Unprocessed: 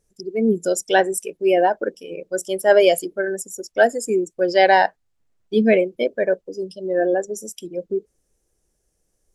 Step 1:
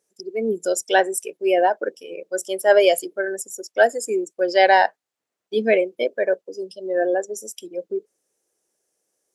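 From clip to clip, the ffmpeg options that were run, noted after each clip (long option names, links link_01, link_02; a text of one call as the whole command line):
ffmpeg -i in.wav -af "highpass=370" out.wav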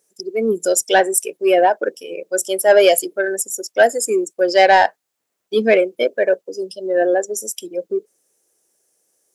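ffmpeg -i in.wav -af "highshelf=frequency=8000:gain=8.5,acontrast=49,volume=-1dB" out.wav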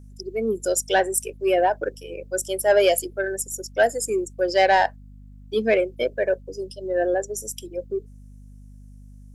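ffmpeg -i in.wav -af "aeval=exprs='val(0)+0.0141*(sin(2*PI*50*n/s)+sin(2*PI*2*50*n/s)/2+sin(2*PI*3*50*n/s)/3+sin(2*PI*4*50*n/s)/4+sin(2*PI*5*50*n/s)/5)':channel_layout=same,volume=-6dB" out.wav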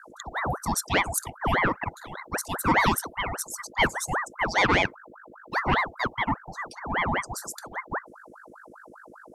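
ffmpeg -i in.wav -af "aeval=exprs='val(0)*sin(2*PI*940*n/s+940*0.7/5*sin(2*PI*5*n/s))':channel_layout=same,volume=-1.5dB" out.wav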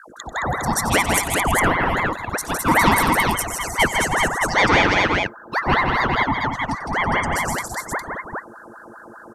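ffmpeg -i in.wav -af "aecho=1:1:92|160|218|328|409:0.178|0.596|0.398|0.251|0.668,volume=4.5dB" out.wav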